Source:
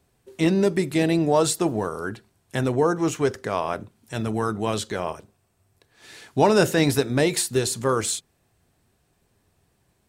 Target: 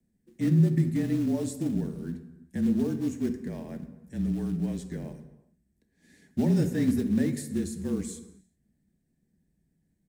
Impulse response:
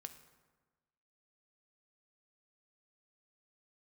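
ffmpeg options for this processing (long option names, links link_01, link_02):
-filter_complex "[0:a]firequalizer=gain_entry='entry(160,0);entry(230,15);entry(390,-2);entry(1300,-24);entry(1800,-2);entry(2700,-15);entry(6800,-6)':delay=0.05:min_phase=1,afreqshift=-34,acrossover=split=290|1100[link_01][link_02][link_03];[link_02]acrusher=bits=4:mode=log:mix=0:aa=0.000001[link_04];[link_01][link_04][link_03]amix=inputs=3:normalize=0[link_05];[1:a]atrim=start_sample=2205,afade=type=out:start_time=0.45:duration=0.01,atrim=end_sample=20286[link_06];[link_05][link_06]afir=irnorm=-1:irlink=0,volume=-4dB"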